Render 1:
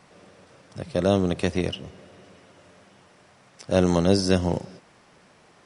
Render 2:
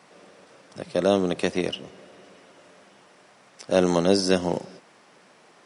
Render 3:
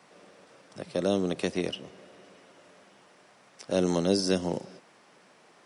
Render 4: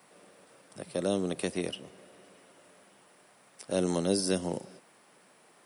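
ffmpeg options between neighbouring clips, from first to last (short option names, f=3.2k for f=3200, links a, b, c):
-af "highpass=220,volume=1.5dB"
-filter_complex "[0:a]acrossover=split=490|3000[a][b][c];[b]acompressor=threshold=-33dB:ratio=2[d];[a][d][c]amix=inputs=3:normalize=0,volume=-3.5dB"
-af "aexciter=amount=5.8:drive=3:freq=8.5k,volume=-3dB"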